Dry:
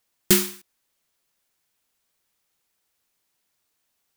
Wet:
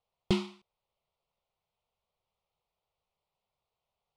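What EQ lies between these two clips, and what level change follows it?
low-pass filter 8,700 Hz 24 dB per octave
high-frequency loss of the air 400 metres
phaser with its sweep stopped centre 690 Hz, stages 4
+1.5 dB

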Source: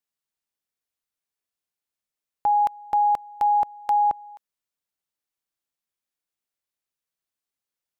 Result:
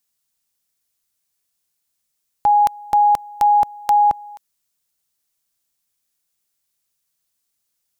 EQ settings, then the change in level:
bass and treble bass +11 dB, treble +9 dB
low-shelf EQ 370 Hz −7 dB
+7.0 dB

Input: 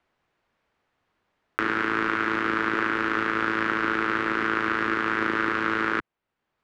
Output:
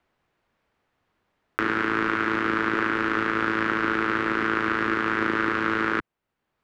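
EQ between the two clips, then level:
low-shelf EQ 390 Hz +3.5 dB
0.0 dB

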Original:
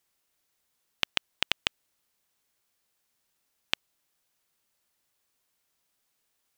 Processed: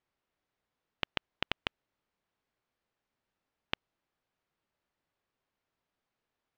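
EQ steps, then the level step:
head-to-tape spacing loss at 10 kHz 31 dB
+1.0 dB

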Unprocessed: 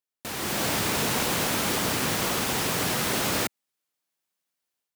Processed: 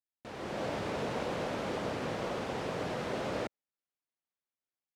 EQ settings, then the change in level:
dynamic equaliser 550 Hz, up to +8 dB, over −47 dBFS, Q 1.5
head-to-tape spacing loss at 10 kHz 22 dB
−8.5 dB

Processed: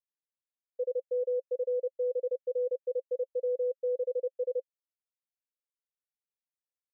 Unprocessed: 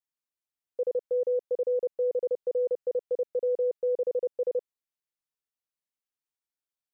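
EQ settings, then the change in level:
formant filter e
four-pole ladder high-pass 400 Hz, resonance 55%
+1.0 dB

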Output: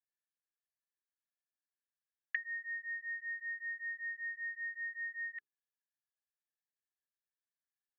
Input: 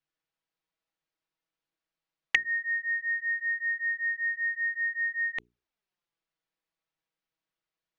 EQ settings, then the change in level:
resonant band-pass 1,700 Hz, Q 20
0.0 dB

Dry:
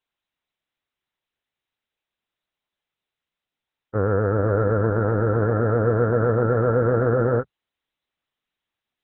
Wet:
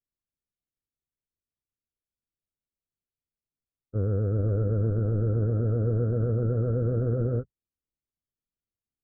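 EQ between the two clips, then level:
moving average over 48 samples
low-shelf EQ 140 Hz +10 dB
−7.5 dB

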